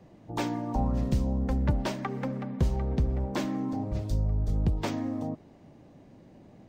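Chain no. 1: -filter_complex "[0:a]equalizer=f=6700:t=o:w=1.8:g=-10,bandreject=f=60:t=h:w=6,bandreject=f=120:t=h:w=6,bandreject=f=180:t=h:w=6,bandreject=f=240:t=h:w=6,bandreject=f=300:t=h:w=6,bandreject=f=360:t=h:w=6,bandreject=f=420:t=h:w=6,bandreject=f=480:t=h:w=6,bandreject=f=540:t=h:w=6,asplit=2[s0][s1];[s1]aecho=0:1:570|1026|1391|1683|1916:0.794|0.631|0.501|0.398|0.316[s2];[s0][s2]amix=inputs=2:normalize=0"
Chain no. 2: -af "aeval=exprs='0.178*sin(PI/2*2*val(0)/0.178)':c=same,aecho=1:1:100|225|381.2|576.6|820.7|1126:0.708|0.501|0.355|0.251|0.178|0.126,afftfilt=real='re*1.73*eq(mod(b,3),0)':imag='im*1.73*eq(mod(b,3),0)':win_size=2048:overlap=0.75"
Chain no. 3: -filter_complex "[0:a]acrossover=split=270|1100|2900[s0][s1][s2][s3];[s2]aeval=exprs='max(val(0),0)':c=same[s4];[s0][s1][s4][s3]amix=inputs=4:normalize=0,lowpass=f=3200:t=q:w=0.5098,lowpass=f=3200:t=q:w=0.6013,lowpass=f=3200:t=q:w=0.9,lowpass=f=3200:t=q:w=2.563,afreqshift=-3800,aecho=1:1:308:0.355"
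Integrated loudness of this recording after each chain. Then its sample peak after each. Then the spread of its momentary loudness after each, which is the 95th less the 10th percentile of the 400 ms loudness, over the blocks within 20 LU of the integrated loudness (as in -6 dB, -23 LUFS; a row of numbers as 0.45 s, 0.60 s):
-27.5 LUFS, -20.5 LUFS, -25.0 LUFS; -11.5 dBFS, -5.5 dBFS, -14.0 dBFS; 7 LU, 15 LU, 8 LU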